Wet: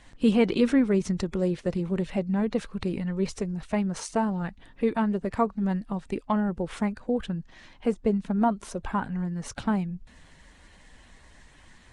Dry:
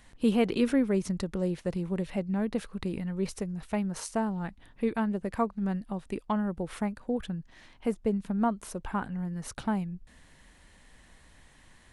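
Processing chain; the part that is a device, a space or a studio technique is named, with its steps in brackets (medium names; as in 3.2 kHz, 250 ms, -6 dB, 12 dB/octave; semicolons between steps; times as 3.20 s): clip after many re-uploads (low-pass 8.6 kHz 24 dB/octave; coarse spectral quantiser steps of 15 dB); trim +4 dB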